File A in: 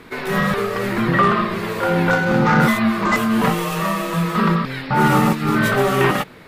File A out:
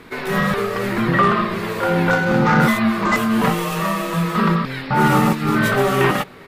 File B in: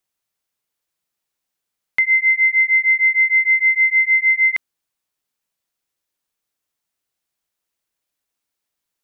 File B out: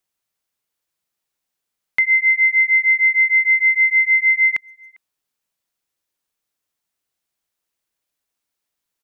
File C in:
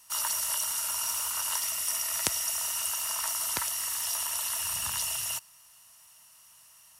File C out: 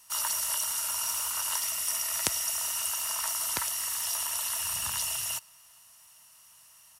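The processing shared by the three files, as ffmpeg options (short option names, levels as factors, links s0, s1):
-filter_complex "[0:a]asplit=2[s0][s1];[s1]adelay=400,highpass=300,lowpass=3400,asoftclip=type=hard:threshold=0.299,volume=0.0398[s2];[s0][s2]amix=inputs=2:normalize=0"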